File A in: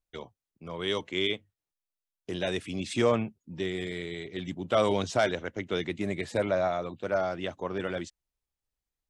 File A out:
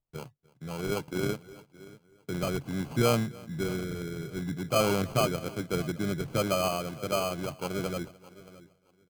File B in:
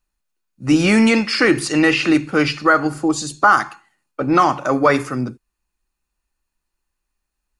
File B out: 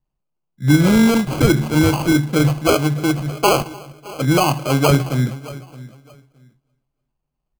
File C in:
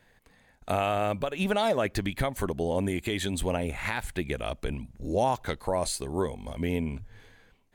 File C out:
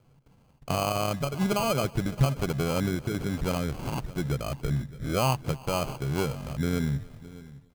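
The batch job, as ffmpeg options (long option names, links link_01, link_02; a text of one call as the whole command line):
ffmpeg -i in.wav -filter_complex "[0:a]highshelf=frequency=3000:gain=-9.5,asplit=2[link_01][link_02];[link_02]adelay=617,lowpass=frequency=3500:poles=1,volume=-19dB,asplit=2[link_03][link_04];[link_04]adelay=617,lowpass=frequency=3500:poles=1,volume=0.21[link_05];[link_03][link_05]amix=inputs=2:normalize=0[link_06];[link_01][link_06]amix=inputs=2:normalize=0,acrusher=samples=24:mix=1:aa=0.000001,equalizer=frequency=140:width=3:gain=14.5,asplit=2[link_07][link_08];[link_08]aecho=0:1:297|594|891:0.0668|0.0261|0.0102[link_09];[link_07][link_09]amix=inputs=2:normalize=0,volume=-1dB" out.wav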